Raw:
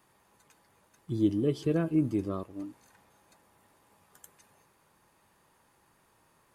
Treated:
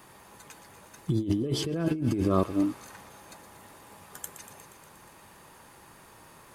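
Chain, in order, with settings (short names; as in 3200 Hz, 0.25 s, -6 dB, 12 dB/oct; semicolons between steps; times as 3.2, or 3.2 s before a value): thin delay 0.119 s, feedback 71%, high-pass 1900 Hz, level -11 dB; negative-ratio compressor -35 dBFS, ratio -1; gain +8 dB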